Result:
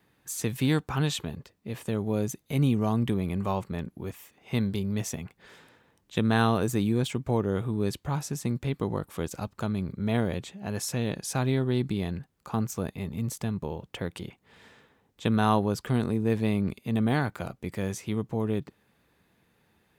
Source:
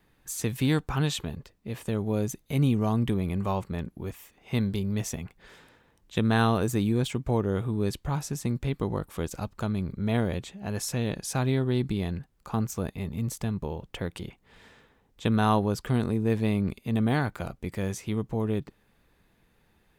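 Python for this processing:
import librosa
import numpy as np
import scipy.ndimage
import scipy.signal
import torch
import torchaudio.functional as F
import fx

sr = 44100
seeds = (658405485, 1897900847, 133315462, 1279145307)

y = scipy.signal.sosfilt(scipy.signal.butter(2, 85.0, 'highpass', fs=sr, output='sos'), x)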